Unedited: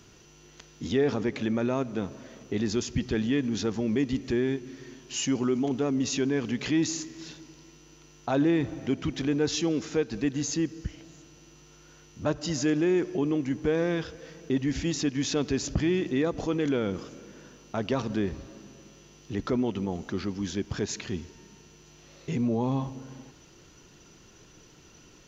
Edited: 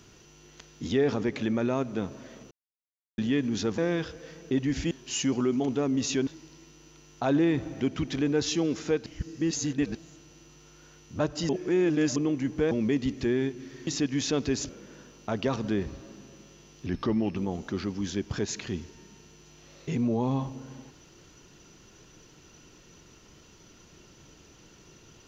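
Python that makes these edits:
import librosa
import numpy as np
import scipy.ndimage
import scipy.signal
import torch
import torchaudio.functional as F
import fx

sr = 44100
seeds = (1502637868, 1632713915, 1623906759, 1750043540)

y = fx.edit(x, sr, fx.silence(start_s=2.51, length_s=0.67),
    fx.swap(start_s=3.78, length_s=1.16, other_s=13.77, other_length_s=1.13),
    fx.cut(start_s=6.3, length_s=1.03),
    fx.reverse_span(start_s=10.12, length_s=0.89),
    fx.reverse_span(start_s=12.55, length_s=0.67),
    fx.cut(start_s=15.72, length_s=1.43),
    fx.speed_span(start_s=19.32, length_s=0.45, speed=0.89), tone=tone)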